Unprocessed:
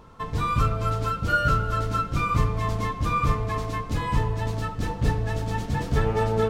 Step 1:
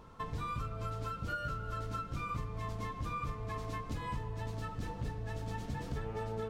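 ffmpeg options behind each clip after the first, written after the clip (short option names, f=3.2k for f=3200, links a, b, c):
-af "acompressor=threshold=-30dB:ratio=6,volume=-5.5dB"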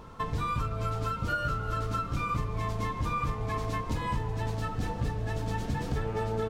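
-filter_complex "[0:a]asplit=8[a][b][c][d][e][f][g][h];[b]adelay=375,afreqshift=-130,volume=-17dB[i];[c]adelay=750,afreqshift=-260,volume=-20.7dB[j];[d]adelay=1125,afreqshift=-390,volume=-24.5dB[k];[e]adelay=1500,afreqshift=-520,volume=-28.2dB[l];[f]adelay=1875,afreqshift=-650,volume=-32dB[m];[g]adelay=2250,afreqshift=-780,volume=-35.7dB[n];[h]adelay=2625,afreqshift=-910,volume=-39.5dB[o];[a][i][j][k][l][m][n][o]amix=inputs=8:normalize=0,volume=7.5dB"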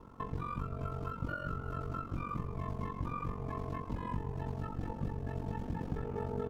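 -filter_complex "[0:a]aeval=exprs='val(0)*sin(2*PI*23*n/s)':c=same,acrossover=split=3900[a][b];[b]acompressor=threshold=-59dB:ratio=4:attack=1:release=60[c];[a][c]amix=inputs=2:normalize=0,equalizer=f=250:t=o:w=1:g=5,equalizer=f=2k:t=o:w=1:g=-4,equalizer=f=4k:t=o:w=1:g=-7,equalizer=f=8k:t=o:w=1:g=-5,volume=-4.5dB"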